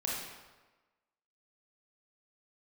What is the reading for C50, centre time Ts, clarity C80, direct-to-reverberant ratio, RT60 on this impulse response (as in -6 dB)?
-0.5 dB, 77 ms, 2.5 dB, -5.0 dB, 1.2 s